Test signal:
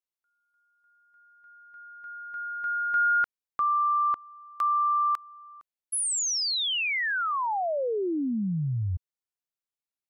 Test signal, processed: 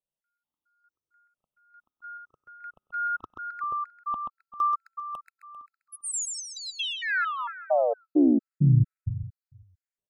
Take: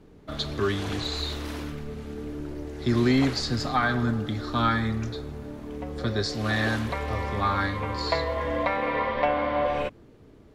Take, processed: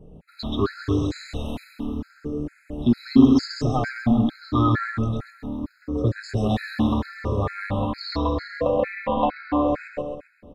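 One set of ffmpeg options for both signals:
-af "afftfilt=real='re*pow(10,11/40*sin(2*PI*(0.51*log(max(b,1)*sr/1024/100)/log(2)-(0.8)*(pts-256)/sr)))':imag='im*pow(10,11/40*sin(2*PI*(0.51*log(max(b,1)*sr/1024/100)/log(2)-(0.8)*(pts-256)/sr)))':win_size=1024:overlap=0.75,tiltshelf=f=970:g=6.5,aecho=1:1:132|264|396|528|660|792:0.631|0.315|0.158|0.0789|0.0394|0.0197,adynamicequalizer=threshold=0.01:dfrequency=3500:dqfactor=1.1:tfrequency=3500:tqfactor=1.1:attack=5:release=100:ratio=0.4:range=1.5:mode=boostabove:tftype=bell,afftfilt=real='re*gt(sin(2*PI*2.2*pts/sr)*(1-2*mod(floor(b*sr/1024/1300),2)),0)':imag='im*gt(sin(2*PI*2.2*pts/sr)*(1-2*mod(floor(b*sr/1024/1300),2)),0)':win_size=1024:overlap=0.75,volume=0.891"

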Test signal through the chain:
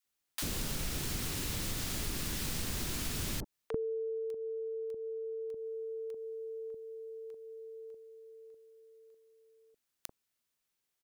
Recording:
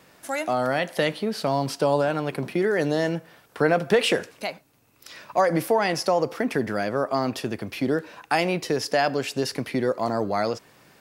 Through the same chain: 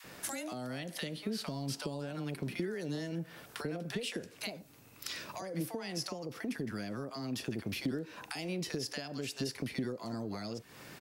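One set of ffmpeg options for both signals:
-filter_complex "[0:a]acrossover=split=810[s0][s1];[s0]adelay=40[s2];[s2][s1]amix=inputs=2:normalize=0,acompressor=threshold=0.0158:ratio=6,adynamicequalizer=threshold=0.00316:dfrequency=540:dqfactor=1.1:tfrequency=540:tqfactor=1.1:attack=5:release=100:ratio=0.375:range=3:mode=cutabove:tftype=bell,acrossover=split=440|3000[s3][s4][s5];[s4]acompressor=threshold=0.00282:ratio=6[s6];[s3][s6][s5]amix=inputs=3:normalize=0,volume=1.68"

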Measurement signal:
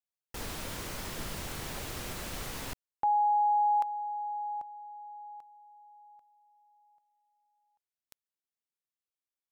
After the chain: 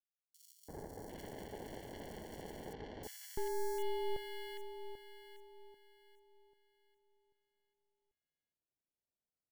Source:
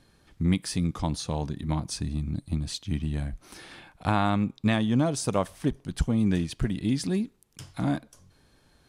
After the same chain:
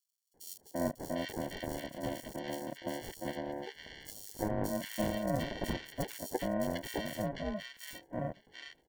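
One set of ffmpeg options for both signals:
-filter_complex "[0:a]aeval=exprs='val(0)*sin(2*PI*830*n/s)':c=same,acrusher=samples=35:mix=1:aa=0.000001,acrossover=split=1600|4800[s0][s1][s2];[s0]adelay=340[s3];[s1]adelay=750[s4];[s3][s4][s2]amix=inputs=3:normalize=0,volume=0.473"

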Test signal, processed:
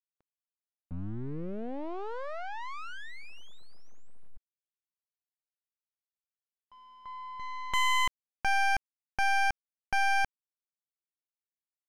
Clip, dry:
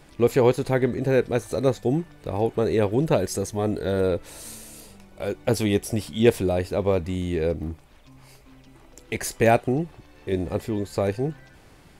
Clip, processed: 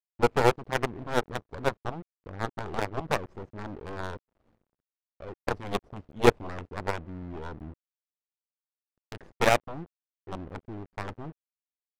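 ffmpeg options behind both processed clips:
-af "aeval=exprs='val(0)*gte(abs(val(0)),0.0224)':c=same,aeval=exprs='0.562*(cos(1*acos(clip(val(0)/0.562,-1,1)))-cos(1*PI/2))+0.112*(cos(3*acos(clip(val(0)/0.562,-1,1)))-cos(3*PI/2))+0.0708*(cos(4*acos(clip(val(0)/0.562,-1,1)))-cos(4*PI/2))+0.00631*(cos(5*acos(clip(val(0)/0.562,-1,1)))-cos(5*PI/2))+0.0631*(cos(7*acos(clip(val(0)/0.562,-1,1)))-cos(7*PI/2))':c=same,adynamicsmooth=sensitivity=4:basefreq=710"

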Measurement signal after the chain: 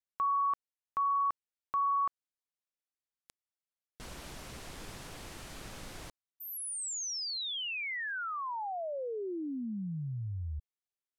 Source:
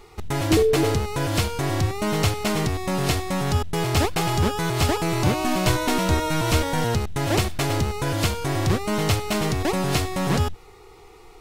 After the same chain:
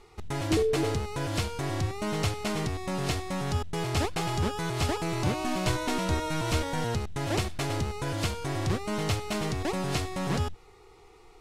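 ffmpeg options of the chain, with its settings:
-af "lowpass=11000,volume=0.447"

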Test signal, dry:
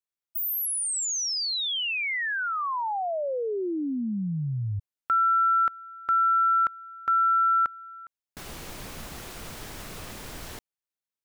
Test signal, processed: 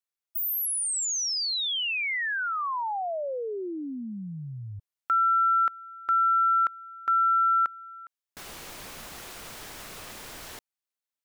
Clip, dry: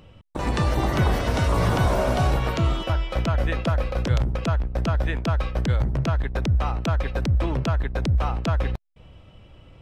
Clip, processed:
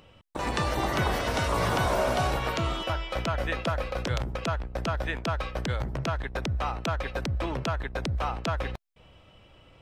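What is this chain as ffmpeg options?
-af "lowshelf=f=320:g=-10"

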